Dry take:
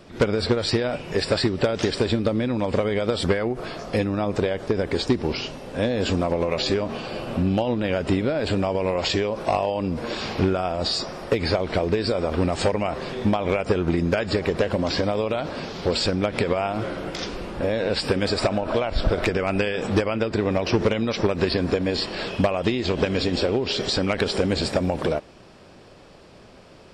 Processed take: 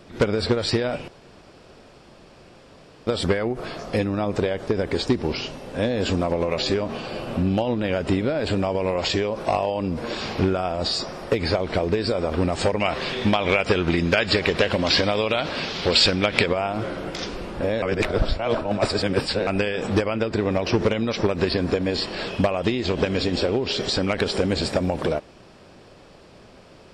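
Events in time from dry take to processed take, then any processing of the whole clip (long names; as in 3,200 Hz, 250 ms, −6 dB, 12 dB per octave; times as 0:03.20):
0:01.08–0:03.07: fill with room tone
0:12.80–0:16.46: parametric band 3,100 Hz +10.5 dB 2.2 octaves
0:17.82–0:19.47: reverse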